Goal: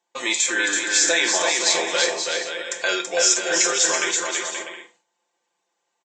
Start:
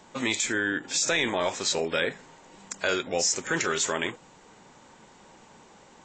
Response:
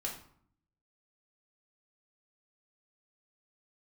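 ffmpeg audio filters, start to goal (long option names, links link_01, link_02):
-filter_complex "[0:a]agate=range=-28dB:threshold=-46dB:ratio=16:detection=peak,highpass=450,bandreject=frequency=1300:width=8.8,aecho=1:1:5.8:0.65,aecho=1:1:330|528|646.8|718.1|760.8:0.631|0.398|0.251|0.158|0.1,asplit=2[link_01][link_02];[1:a]atrim=start_sample=2205,atrim=end_sample=4410,highshelf=frequency=2800:gain=11.5[link_03];[link_02][link_03]afir=irnorm=-1:irlink=0,volume=-7dB[link_04];[link_01][link_04]amix=inputs=2:normalize=0"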